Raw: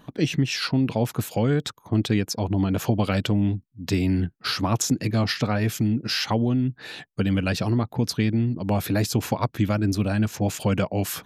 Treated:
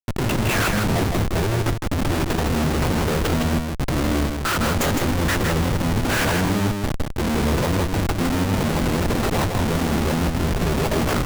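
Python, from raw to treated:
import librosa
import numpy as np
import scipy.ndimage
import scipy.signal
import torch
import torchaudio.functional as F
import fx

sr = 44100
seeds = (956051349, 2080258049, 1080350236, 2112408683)

p1 = scipy.ndimage.median_filter(x, 9, mode='constant')
p2 = fx.peak_eq(p1, sr, hz=6100.0, db=-14.0, octaves=2.2)
p3 = fx.doubler(p2, sr, ms=14.0, db=-10.5)
p4 = np.clip(10.0 ** (25.0 / 20.0) * p3, -1.0, 1.0) / 10.0 ** (25.0 / 20.0)
p5 = p3 + (p4 * 10.0 ** (-8.5 / 20.0))
p6 = scipy.signal.sosfilt(scipy.signal.butter(4, 83.0, 'highpass', fs=sr, output='sos'), p5)
p7 = fx.over_compress(p6, sr, threshold_db=-25.0, ratio=-1.0)
p8 = fx.pitch_keep_formants(p7, sr, semitones=-4.0)
p9 = fx.high_shelf(p8, sr, hz=7800.0, db=7.0)
p10 = fx.schmitt(p9, sr, flips_db=-30.5)
p11 = p10 + fx.echo_single(p10, sr, ms=160, db=-4.5, dry=0)
p12 = fx.buffer_crackle(p11, sr, first_s=0.91, period_s=0.79, block=1024, kind='repeat')
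y = p12 * 10.0 ** (6.0 / 20.0)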